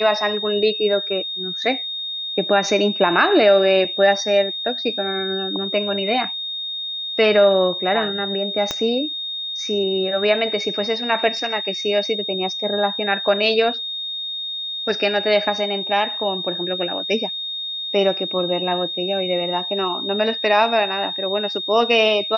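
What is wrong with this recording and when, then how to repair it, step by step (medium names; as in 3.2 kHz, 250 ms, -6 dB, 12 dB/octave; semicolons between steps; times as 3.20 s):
whine 3.7 kHz -25 dBFS
8.71 s: pop -8 dBFS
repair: de-click; band-stop 3.7 kHz, Q 30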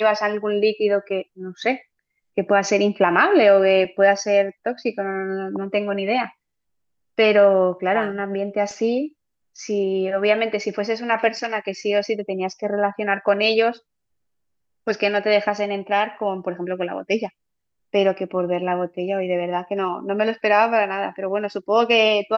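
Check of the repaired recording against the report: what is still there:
8.71 s: pop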